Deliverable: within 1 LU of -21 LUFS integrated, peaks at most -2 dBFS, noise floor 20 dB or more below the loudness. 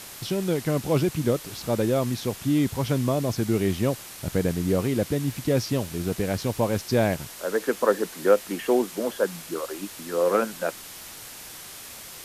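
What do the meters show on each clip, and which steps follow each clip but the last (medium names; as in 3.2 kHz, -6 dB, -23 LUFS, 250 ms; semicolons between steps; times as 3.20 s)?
noise floor -42 dBFS; noise floor target -46 dBFS; loudness -25.5 LUFS; peak level -6.0 dBFS; loudness target -21.0 LUFS
-> noise reduction 6 dB, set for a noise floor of -42 dBFS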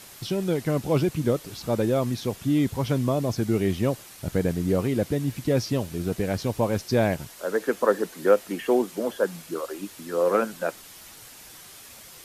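noise floor -46 dBFS; loudness -26.0 LUFS; peak level -6.0 dBFS; loudness target -21.0 LUFS
-> trim +5 dB; peak limiter -2 dBFS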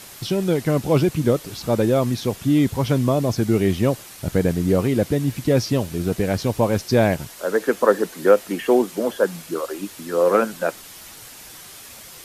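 loudness -21.0 LUFS; peak level -2.0 dBFS; noise floor -41 dBFS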